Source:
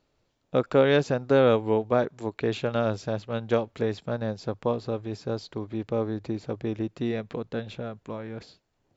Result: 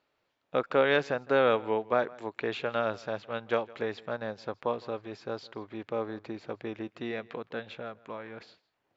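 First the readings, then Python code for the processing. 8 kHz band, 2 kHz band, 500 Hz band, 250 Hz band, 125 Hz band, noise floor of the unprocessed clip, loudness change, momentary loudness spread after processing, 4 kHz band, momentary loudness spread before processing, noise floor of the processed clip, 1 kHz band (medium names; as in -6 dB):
no reading, +1.5 dB, -4.5 dB, -8.5 dB, -13.5 dB, -73 dBFS, -4.5 dB, 16 LU, -2.5 dB, 13 LU, -78 dBFS, -0.5 dB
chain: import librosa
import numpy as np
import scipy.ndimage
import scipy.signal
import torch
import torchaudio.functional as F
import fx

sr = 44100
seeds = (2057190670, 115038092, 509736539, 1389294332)

p1 = scipy.signal.sosfilt(scipy.signal.butter(2, 2000.0, 'lowpass', fs=sr, output='sos'), x)
p2 = fx.tilt_eq(p1, sr, slope=4.5)
y = p2 + fx.echo_single(p2, sr, ms=161, db=-22.5, dry=0)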